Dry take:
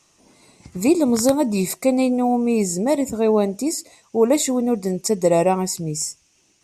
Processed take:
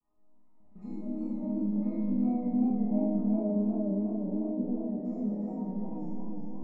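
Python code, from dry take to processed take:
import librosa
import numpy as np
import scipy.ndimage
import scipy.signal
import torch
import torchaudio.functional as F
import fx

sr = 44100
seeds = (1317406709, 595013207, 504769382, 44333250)

p1 = fx.env_lowpass_down(x, sr, base_hz=370.0, full_db=-16.5)
p2 = fx.riaa(p1, sr, side='playback')
p3 = fx.env_lowpass(p2, sr, base_hz=960.0, full_db=-14.5)
p4 = fx.peak_eq(p3, sr, hz=960.0, db=12.5, octaves=0.71)
p5 = fx.level_steps(p4, sr, step_db=20)
p6 = fx.resonator_bank(p5, sr, root=56, chord='minor', decay_s=0.65)
p7 = fx.small_body(p6, sr, hz=(220.0, 720.0, 3700.0), ring_ms=45, db=6)
p8 = p7 + fx.echo_wet_lowpass(p7, sr, ms=511, feedback_pct=61, hz=2700.0, wet_db=-7.5, dry=0)
p9 = fx.rev_freeverb(p8, sr, rt60_s=1.3, hf_ratio=0.95, predelay_ms=0, drr_db=-6.5)
p10 = fx.echo_warbled(p9, sr, ms=354, feedback_pct=40, rate_hz=2.8, cents=97, wet_db=-3.5)
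y = p10 * librosa.db_to_amplitude(-3.5)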